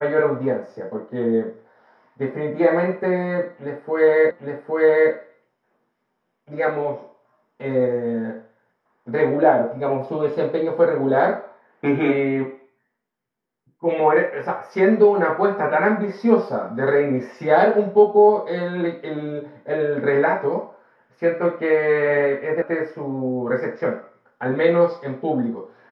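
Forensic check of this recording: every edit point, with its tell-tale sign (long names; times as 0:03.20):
0:04.31: the same again, the last 0.81 s
0:22.62: cut off before it has died away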